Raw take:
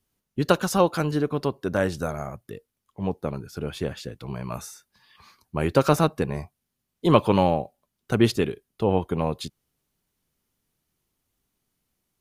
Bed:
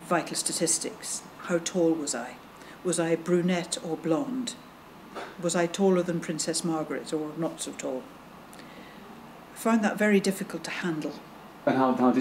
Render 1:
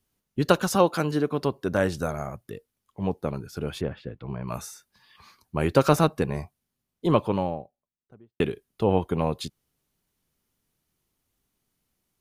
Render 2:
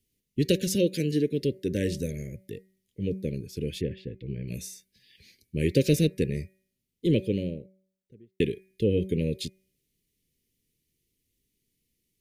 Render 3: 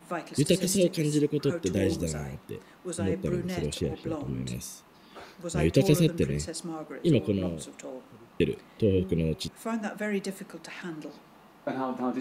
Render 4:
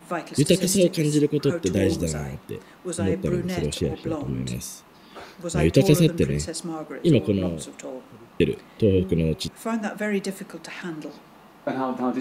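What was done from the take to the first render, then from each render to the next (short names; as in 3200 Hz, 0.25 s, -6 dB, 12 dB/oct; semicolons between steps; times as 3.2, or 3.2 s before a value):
0.75–1.42 HPF 140 Hz; 3.81–4.48 air absorption 410 m; 6.36–8.4 studio fade out
inverse Chebyshev band-stop 690–1400 Hz, stop band 40 dB; de-hum 189.5 Hz, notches 13
add bed -8 dB
gain +5 dB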